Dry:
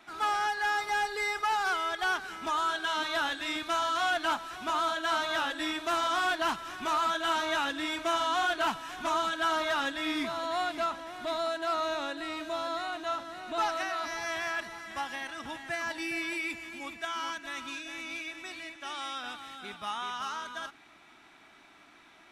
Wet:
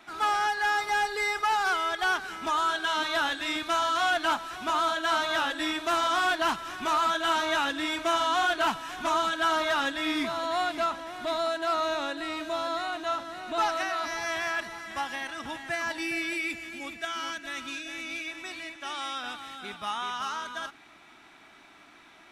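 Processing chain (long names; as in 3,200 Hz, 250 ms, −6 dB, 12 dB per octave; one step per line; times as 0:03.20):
0:16.14–0:18.26: parametric band 1,000 Hz −8 dB 0.4 octaves
level +3 dB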